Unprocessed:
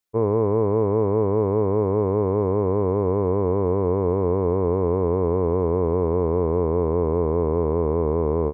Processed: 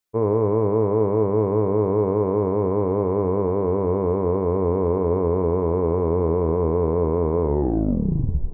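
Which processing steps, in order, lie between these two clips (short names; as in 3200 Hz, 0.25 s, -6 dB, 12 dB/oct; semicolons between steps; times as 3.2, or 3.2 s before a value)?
tape stop at the end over 1.11 s; two-slope reverb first 0.47 s, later 4.3 s, from -18 dB, DRR 9 dB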